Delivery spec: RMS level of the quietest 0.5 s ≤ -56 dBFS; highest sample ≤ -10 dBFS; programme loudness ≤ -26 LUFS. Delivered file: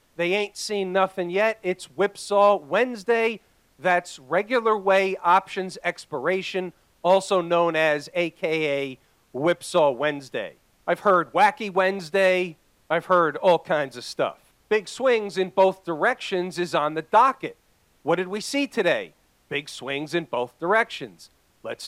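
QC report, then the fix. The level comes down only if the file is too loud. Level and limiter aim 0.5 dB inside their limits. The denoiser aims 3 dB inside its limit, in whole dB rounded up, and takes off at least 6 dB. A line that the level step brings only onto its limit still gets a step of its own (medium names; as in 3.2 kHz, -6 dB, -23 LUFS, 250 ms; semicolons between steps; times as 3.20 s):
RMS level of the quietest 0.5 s -63 dBFS: pass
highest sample -6.5 dBFS: fail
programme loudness -23.5 LUFS: fail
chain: trim -3 dB; peak limiter -10.5 dBFS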